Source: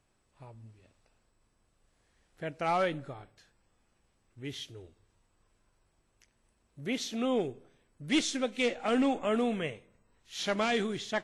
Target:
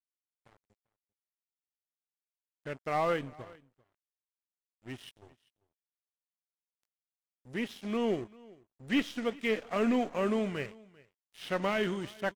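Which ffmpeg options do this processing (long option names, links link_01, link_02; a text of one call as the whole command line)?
ffmpeg -i in.wav -filter_complex "[0:a]asetrate=40131,aresample=44100,acrossover=split=3400[link_01][link_02];[link_02]acompressor=threshold=-52dB:ratio=4:attack=1:release=60[link_03];[link_01][link_03]amix=inputs=2:normalize=0,aeval=exprs='sgn(val(0))*max(abs(val(0))-0.00501,0)':channel_layout=same,aecho=1:1:393:0.0668" out.wav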